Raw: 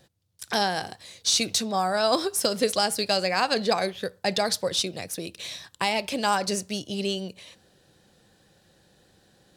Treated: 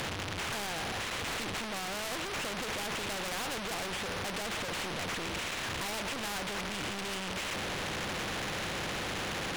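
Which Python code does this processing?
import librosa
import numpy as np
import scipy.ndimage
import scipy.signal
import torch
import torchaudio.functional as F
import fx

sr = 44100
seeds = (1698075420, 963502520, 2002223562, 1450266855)

y = fx.delta_mod(x, sr, bps=16000, step_db=-24.0)
y = np.clip(10.0 ** (30.5 / 20.0) * y, -1.0, 1.0) / 10.0 ** (30.5 / 20.0)
y = fx.spectral_comp(y, sr, ratio=2.0)
y = F.gain(torch.from_numpy(y), 8.5).numpy()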